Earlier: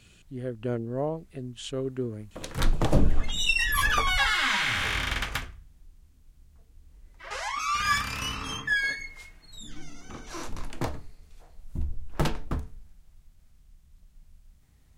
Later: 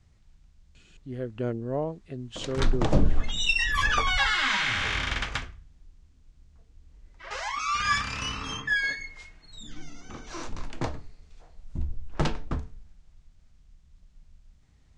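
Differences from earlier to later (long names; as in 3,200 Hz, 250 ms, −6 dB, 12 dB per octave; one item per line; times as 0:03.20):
speech: entry +0.75 s
master: add low-pass filter 7,300 Hz 24 dB per octave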